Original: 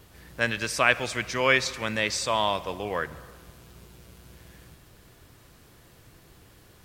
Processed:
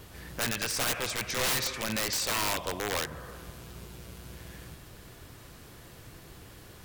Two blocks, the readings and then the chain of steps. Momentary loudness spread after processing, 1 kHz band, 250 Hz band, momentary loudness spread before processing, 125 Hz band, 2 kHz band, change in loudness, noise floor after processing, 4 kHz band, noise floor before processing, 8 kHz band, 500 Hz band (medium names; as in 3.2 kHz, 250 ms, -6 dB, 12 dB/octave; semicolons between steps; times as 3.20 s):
22 LU, -7.0 dB, -3.5 dB, 9 LU, -2.0 dB, -8.0 dB, -4.0 dB, -51 dBFS, -1.0 dB, -55 dBFS, +3.5 dB, -7.5 dB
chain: in parallel at +1 dB: compression 6:1, threshold -41 dBFS, peak gain reduction 24 dB; on the sum: integer overflow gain 20.5 dB; trim -2 dB